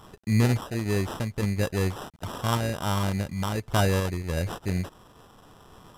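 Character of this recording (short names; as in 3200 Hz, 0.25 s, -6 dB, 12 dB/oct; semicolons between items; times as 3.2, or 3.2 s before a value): a quantiser's noise floor 10-bit, dither none; random-step tremolo; aliases and images of a low sample rate 2200 Hz, jitter 0%; SBC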